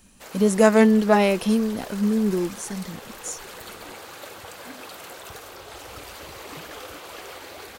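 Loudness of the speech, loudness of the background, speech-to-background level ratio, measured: -20.0 LUFS, -39.0 LUFS, 19.0 dB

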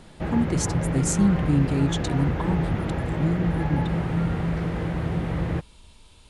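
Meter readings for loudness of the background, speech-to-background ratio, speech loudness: -27.0 LUFS, 1.0 dB, -26.0 LUFS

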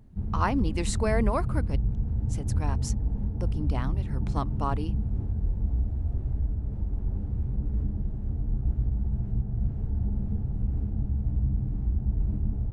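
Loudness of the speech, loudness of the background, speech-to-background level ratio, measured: -33.0 LUFS, -30.5 LUFS, -2.5 dB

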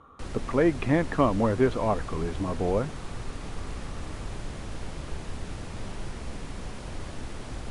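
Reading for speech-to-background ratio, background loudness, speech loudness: 12.0 dB, -39.0 LUFS, -27.0 LUFS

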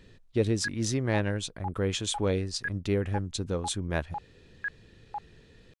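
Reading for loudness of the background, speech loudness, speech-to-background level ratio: -41.0 LUFS, -30.5 LUFS, 10.5 dB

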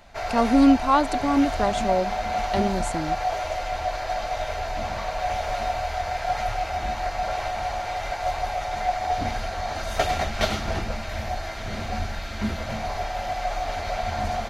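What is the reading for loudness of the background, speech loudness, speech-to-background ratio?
-28.0 LUFS, -23.0 LUFS, 5.0 dB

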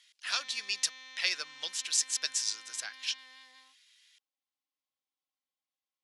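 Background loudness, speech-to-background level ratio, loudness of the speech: -49.0 LUFS, 16.5 dB, -32.5 LUFS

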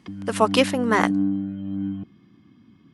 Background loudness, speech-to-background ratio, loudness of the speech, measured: -27.5 LUFS, 5.5 dB, -22.0 LUFS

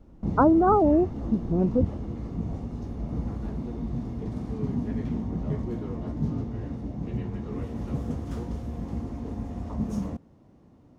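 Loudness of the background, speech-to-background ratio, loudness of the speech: -32.5 LUFS, 9.5 dB, -23.0 LUFS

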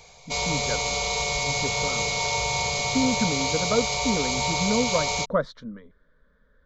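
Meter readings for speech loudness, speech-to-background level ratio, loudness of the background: -29.0 LUFS, -4.0 dB, -25.0 LUFS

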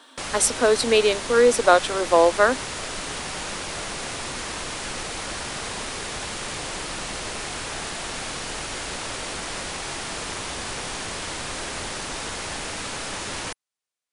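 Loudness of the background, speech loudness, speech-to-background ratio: -30.0 LUFS, -19.5 LUFS, 10.5 dB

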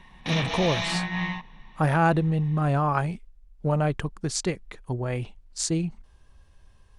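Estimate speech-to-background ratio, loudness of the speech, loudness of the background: 2.0 dB, -27.0 LUFS, -29.0 LUFS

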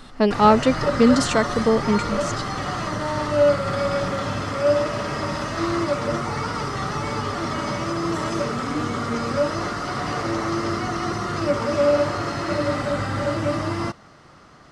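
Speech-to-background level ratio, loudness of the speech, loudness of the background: 4.5 dB, -19.5 LUFS, -24.0 LUFS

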